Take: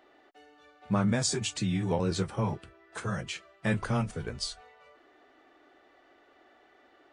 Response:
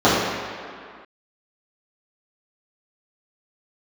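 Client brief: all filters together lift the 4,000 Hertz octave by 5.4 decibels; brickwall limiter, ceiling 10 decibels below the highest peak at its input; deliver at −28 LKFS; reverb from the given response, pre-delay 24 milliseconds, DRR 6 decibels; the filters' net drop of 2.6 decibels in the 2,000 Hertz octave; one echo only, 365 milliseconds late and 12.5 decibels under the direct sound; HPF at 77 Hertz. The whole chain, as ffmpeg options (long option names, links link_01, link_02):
-filter_complex "[0:a]highpass=77,equalizer=frequency=2000:width_type=o:gain=-5.5,equalizer=frequency=4000:width_type=o:gain=8,alimiter=limit=-21.5dB:level=0:latency=1,aecho=1:1:365:0.237,asplit=2[link_01][link_02];[1:a]atrim=start_sample=2205,adelay=24[link_03];[link_02][link_03]afir=irnorm=-1:irlink=0,volume=-32.5dB[link_04];[link_01][link_04]amix=inputs=2:normalize=0,volume=2.5dB"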